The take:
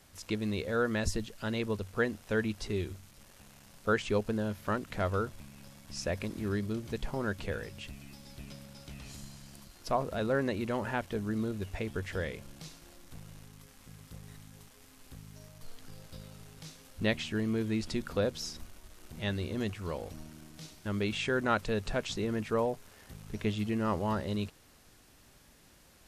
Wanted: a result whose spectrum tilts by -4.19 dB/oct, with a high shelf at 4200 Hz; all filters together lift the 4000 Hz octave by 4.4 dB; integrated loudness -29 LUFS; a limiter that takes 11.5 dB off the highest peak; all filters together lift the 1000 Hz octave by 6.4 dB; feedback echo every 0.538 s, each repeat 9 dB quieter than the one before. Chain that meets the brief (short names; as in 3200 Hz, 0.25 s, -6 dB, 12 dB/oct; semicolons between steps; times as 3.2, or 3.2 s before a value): bell 1000 Hz +8.5 dB; bell 4000 Hz +8 dB; high shelf 4200 Hz -5.5 dB; limiter -21 dBFS; feedback echo 0.538 s, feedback 35%, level -9 dB; gain +5 dB